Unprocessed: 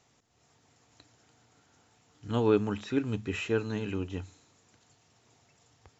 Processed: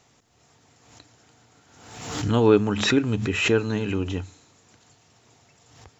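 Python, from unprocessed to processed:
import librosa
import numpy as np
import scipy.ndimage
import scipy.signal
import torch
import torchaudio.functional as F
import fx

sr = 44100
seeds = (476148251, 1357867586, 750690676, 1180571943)

y = fx.pre_swell(x, sr, db_per_s=56.0)
y = F.gain(torch.from_numpy(y), 7.0).numpy()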